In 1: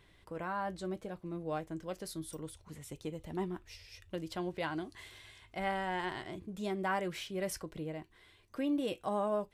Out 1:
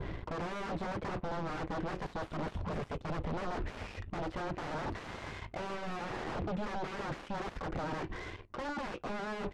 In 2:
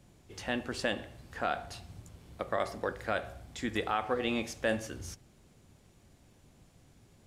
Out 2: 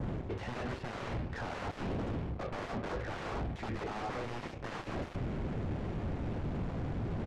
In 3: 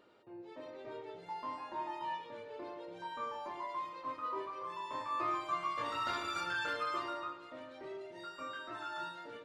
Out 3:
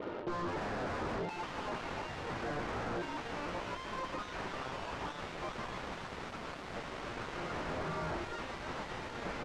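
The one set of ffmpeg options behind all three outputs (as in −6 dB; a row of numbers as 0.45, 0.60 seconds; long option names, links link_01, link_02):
-af "adynamicequalizer=threshold=0.002:dfrequency=2400:dqfactor=1.6:tfrequency=2400:tqfactor=1.6:attack=5:release=100:ratio=0.375:range=3:mode=boostabove:tftype=bell,areverse,acompressor=threshold=-48dB:ratio=6,areverse,aeval=exprs='0.015*sin(PI/2*8.91*val(0)/0.015)':channel_layout=same,adynamicsmooth=sensitivity=1:basefreq=1400,aeval=exprs='0.0158*(cos(1*acos(clip(val(0)/0.0158,-1,1)))-cos(1*PI/2))+0.00141*(cos(3*acos(clip(val(0)/0.0158,-1,1)))-cos(3*PI/2))+0.00126*(cos(7*acos(clip(val(0)/0.0158,-1,1)))-cos(7*PI/2))':channel_layout=same,aresample=32000,aresample=44100,volume=6dB"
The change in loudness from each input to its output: −0.5, −3.5, +0.5 LU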